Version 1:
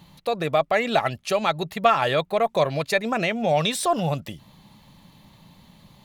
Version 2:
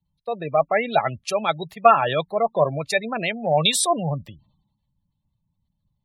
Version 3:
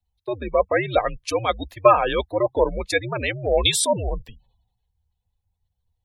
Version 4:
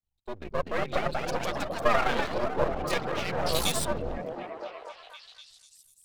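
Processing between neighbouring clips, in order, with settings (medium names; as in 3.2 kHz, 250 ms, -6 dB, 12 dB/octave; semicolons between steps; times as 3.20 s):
spectral gate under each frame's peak -20 dB strong; three bands expanded up and down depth 100%
frequency shift -97 Hz
ever faster or slower copies 293 ms, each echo +2 st, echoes 3; half-wave rectifier; repeats whose band climbs or falls 247 ms, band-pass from 210 Hz, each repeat 0.7 oct, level 0 dB; trim -6.5 dB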